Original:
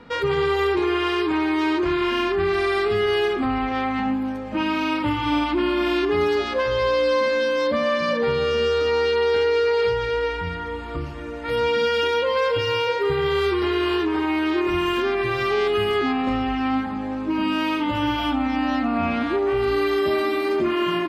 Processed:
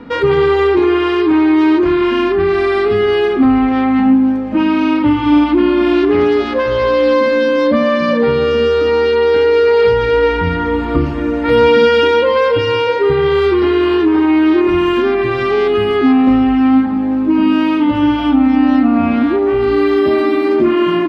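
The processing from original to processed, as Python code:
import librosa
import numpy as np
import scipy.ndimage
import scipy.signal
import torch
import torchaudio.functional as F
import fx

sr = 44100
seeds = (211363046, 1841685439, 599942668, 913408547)

y = fx.doppler_dist(x, sr, depth_ms=0.14, at=(5.92, 7.14))
y = fx.lowpass(y, sr, hz=2800.0, slope=6)
y = fx.peak_eq(y, sr, hz=270.0, db=9.0, octaves=0.71)
y = fx.rider(y, sr, range_db=10, speed_s=2.0)
y = y * librosa.db_to_amplitude(6.0)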